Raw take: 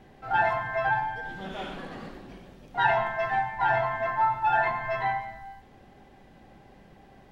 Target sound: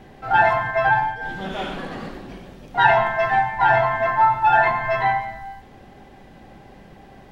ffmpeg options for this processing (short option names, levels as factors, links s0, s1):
-filter_complex "[0:a]asplit=3[s0][s1][s2];[s0]afade=t=out:st=0.7:d=0.02[s3];[s1]agate=range=0.0224:threshold=0.0355:ratio=3:detection=peak,afade=t=in:st=0.7:d=0.02,afade=t=out:st=1.2:d=0.02[s4];[s2]afade=t=in:st=1.2:d=0.02[s5];[s3][s4][s5]amix=inputs=3:normalize=0,volume=2.51"